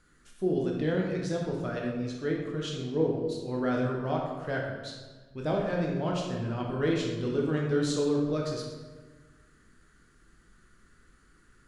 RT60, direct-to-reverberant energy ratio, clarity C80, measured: 1.4 s, -1.5 dB, 4.0 dB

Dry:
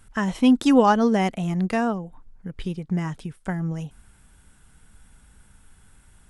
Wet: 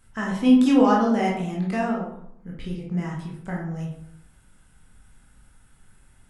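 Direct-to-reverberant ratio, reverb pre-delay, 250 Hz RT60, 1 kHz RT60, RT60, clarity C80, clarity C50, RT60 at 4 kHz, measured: -3.5 dB, 16 ms, 0.80 s, 0.70 s, 0.70 s, 7.5 dB, 3.5 dB, 0.40 s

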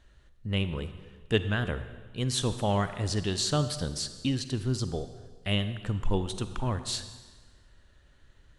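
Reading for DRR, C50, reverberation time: 10.5 dB, 11.0 dB, 1.4 s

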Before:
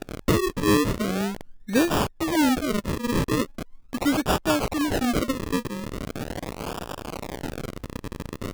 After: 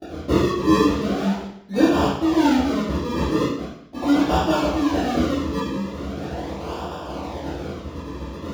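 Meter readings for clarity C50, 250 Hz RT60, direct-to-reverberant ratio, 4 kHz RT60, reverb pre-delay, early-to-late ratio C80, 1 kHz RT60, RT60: 0.5 dB, 0.75 s, -19.0 dB, 0.70 s, 3 ms, 4.5 dB, 0.70 s, 0.70 s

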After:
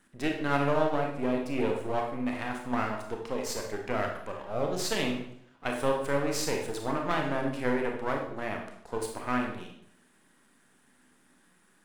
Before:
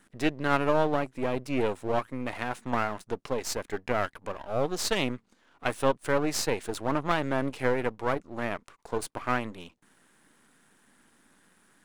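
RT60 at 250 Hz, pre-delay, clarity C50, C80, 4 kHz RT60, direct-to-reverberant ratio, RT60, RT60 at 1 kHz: 0.75 s, 26 ms, 4.5 dB, 8.0 dB, 0.60 s, 1.0 dB, 0.70 s, 0.65 s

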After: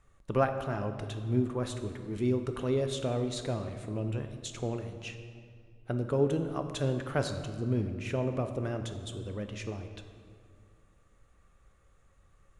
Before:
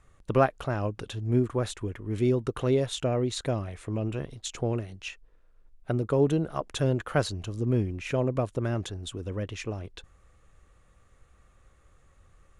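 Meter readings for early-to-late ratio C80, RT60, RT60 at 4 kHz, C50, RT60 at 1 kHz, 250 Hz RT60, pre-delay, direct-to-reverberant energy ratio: 9.5 dB, 2.2 s, 1.4 s, 8.0 dB, 2.1 s, 2.6 s, 3 ms, 6.5 dB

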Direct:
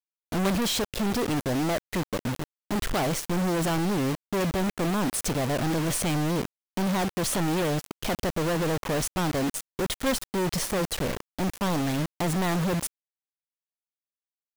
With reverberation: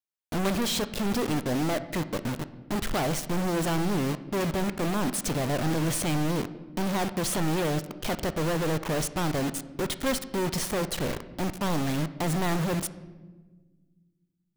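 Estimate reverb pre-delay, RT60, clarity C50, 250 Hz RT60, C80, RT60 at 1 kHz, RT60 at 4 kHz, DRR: 3 ms, 1.4 s, 14.5 dB, 2.2 s, 16.0 dB, 1.1 s, 0.85 s, 12.0 dB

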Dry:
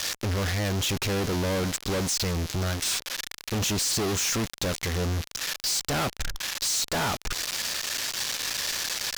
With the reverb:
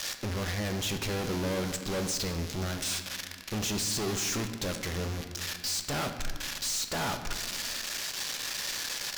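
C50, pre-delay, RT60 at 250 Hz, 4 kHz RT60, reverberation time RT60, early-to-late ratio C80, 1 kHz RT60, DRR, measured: 8.0 dB, 4 ms, 2.5 s, 1.2 s, 1.7 s, 9.5 dB, 1.5 s, 6.0 dB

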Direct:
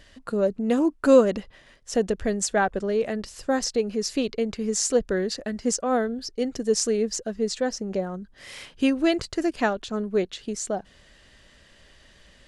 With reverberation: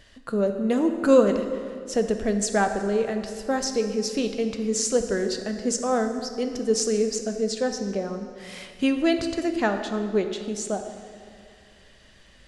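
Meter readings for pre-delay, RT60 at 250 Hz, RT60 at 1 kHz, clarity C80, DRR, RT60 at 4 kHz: 3 ms, 2.3 s, 2.2 s, 8.5 dB, 6.0 dB, 1.7 s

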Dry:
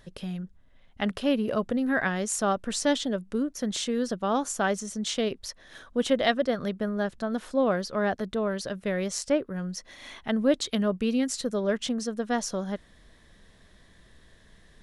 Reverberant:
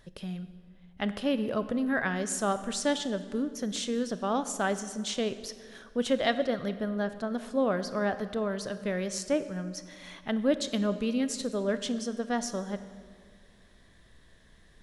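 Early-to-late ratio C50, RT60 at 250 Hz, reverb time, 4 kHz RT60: 12.5 dB, 2.1 s, 1.9 s, 1.4 s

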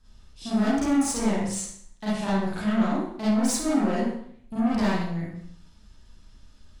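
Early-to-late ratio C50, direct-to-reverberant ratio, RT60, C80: -3.5 dB, -10.0 dB, 0.65 s, 3.0 dB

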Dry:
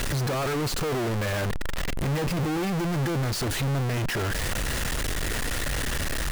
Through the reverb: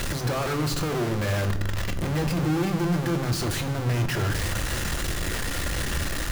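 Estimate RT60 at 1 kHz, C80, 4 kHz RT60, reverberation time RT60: 0.95 s, 13.5 dB, 0.80 s, 1.1 s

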